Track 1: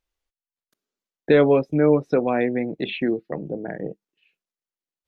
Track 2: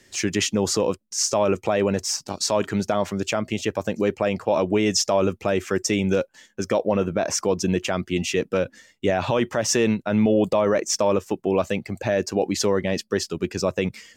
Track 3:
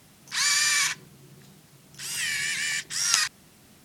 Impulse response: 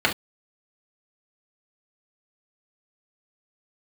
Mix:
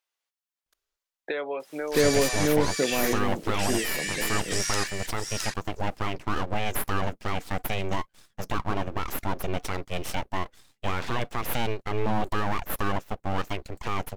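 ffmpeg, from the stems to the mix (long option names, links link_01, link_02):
-filter_complex "[0:a]volume=1.5dB,asplit=2[link_01][link_02];[link_02]volume=-8dB[link_03];[1:a]aeval=exprs='abs(val(0))':channel_layout=same,adelay=1800,volume=-4.5dB[link_04];[2:a]aeval=exprs='0.794*(cos(1*acos(clip(val(0)/0.794,-1,1)))-cos(1*PI/2))+0.141*(cos(5*acos(clip(val(0)/0.794,-1,1)))-cos(5*PI/2))':channel_layout=same,adelay=1600,volume=-1dB,asplit=2[link_05][link_06];[link_06]volume=-14.5dB[link_07];[link_01][link_05]amix=inputs=2:normalize=0,highpass=680,acompressor=threshold=-30dB:ratio=4,volume=0dB[link_08];[link_03][link_07]amix=inputs=2:normalize=0,aecho=0:1:663:1[link_09];[link_04][link_08][link_09]amix=inputs=3:normalize=0"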